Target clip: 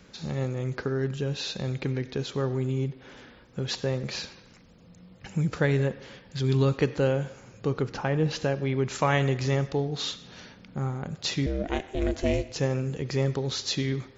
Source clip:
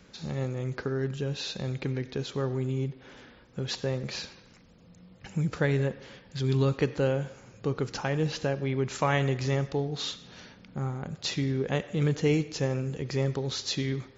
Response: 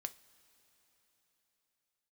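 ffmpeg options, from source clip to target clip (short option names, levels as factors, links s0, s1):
-filter_complex "[0:a]asettb=1/sr,asplit=3[s0][s1][s2];[s0]atrim=end=7.824[s3];[s1]atrim=start=7.82:end=8.31,asetpts=PTS-STARTPTS,afade=t=in:d=0.004:c=qsin,afade=t=out:st=0.486:d=0.004:c=qsin,aemphasis=mode=reproduction:type=75fm[s4];[s2]atrim=start=8.306[s5];[s3][s4]acrossfade=d=0.004:c1=hsin:c2=qsin[s6];[s6][s5]acrossfade=d=0.004:c1=qsin:c2=hsin,asettb=1/sr,asplit=3[s7][s8][s9];[s7]atrim=end=11.464[s10];[s8]atrim=start=11.46:end=12.56,asetpts=PTS-STARTPTS,afade=t=in:d=0.004:c=qsin,afade=t=out:st=1.096:d=0.004:c=qsin,aeval=exprs='val(0)*sin(2*PI*200*n/s)':c=same[s11];[s9]atrim=start=12.556[s12];[s10][s11]acrossfade=d=0.004:c1=hsin:c2=qsin[s13];[s13][s12]acrossfade=d=0.004:c1=qsin:c2=hsin,volume=1.26"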